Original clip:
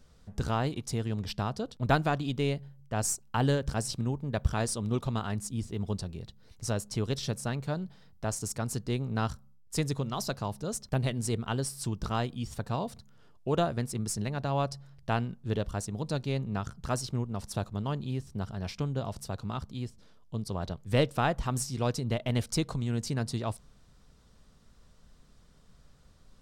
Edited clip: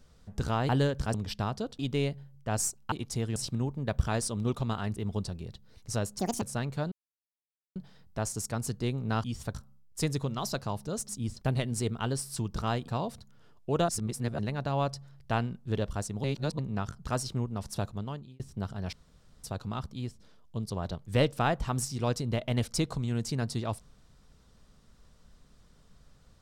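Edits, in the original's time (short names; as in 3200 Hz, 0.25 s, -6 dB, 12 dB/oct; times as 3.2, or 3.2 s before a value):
0.69–1.13 swap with 3.37–3.82
1.78–2.24 cut
5.42–5.7 move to 10.84
6.93–7.32 speed 172%
7.82 insert silence 0.84 s
12.35–12.66 move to 9.3
13.67–14.17 reverse
16.02–16.37 reverse
17.65–18.18 fade out
18.71–19.22 room tone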